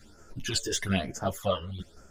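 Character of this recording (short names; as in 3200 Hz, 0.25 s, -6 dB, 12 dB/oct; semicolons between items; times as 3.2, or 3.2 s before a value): phasing stages 12, 1.1 Hz, lowest notch 220–3800 Hz; tremolo saw down 5.6 Hz, depth 50%; a shimmering, thickened sound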